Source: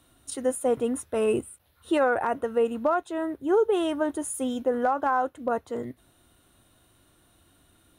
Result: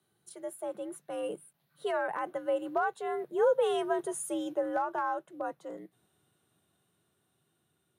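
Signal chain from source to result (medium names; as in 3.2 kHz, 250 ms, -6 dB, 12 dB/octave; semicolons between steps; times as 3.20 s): Doppler pass-by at 3.63 s, 13 m/s, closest 14 m; frequency shift +71 Hz; trim -3.5 dB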